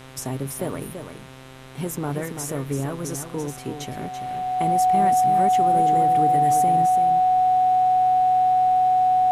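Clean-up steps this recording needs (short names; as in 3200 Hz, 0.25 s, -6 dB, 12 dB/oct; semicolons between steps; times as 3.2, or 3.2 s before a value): de-hum 131.2 Hz, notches 31; notch 740 Hz, Q 30; expander -30 dBFS, range -21 dB; inverse comb 0.335 s -8 dB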